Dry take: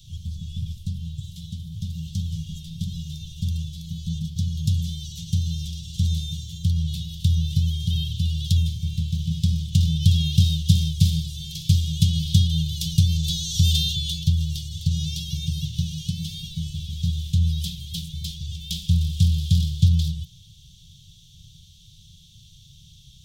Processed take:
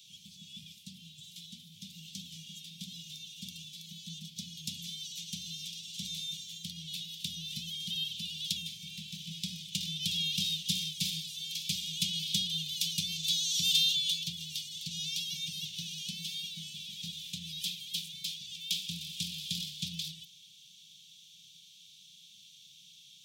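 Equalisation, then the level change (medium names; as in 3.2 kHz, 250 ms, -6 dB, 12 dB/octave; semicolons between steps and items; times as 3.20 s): high-pass 260 Hz 24 dB/octave; peaking EQ 2.4 kHz +9.5 dB 0.36 oct; -2.5 dB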